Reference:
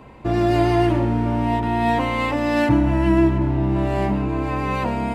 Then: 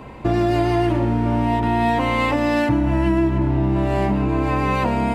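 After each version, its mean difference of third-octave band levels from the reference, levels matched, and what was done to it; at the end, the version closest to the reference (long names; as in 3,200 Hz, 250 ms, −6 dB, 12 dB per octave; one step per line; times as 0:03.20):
1.5 dB: downward compressor 4 to 1, threshold −22 dBFS, peak gain reduction 8.5 dB
level +6 dB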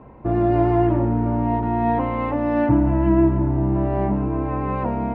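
5.0 dB: low-pass filter 1,200 Hz 12 dB per octave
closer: first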